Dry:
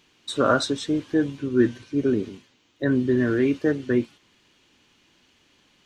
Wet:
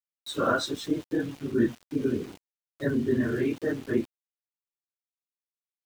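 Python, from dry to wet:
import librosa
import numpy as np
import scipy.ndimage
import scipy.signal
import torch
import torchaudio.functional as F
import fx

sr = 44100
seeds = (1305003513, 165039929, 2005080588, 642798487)

y = fx.phase_scramble(x, sr, seeds[0], window_ms=50)
y = np.where(np.abs(y) >= 10.0 ** (-38.0 / 20.0), y, 0.0)
y = F.gain(torch.from_numpy(y), -5.0).numpy()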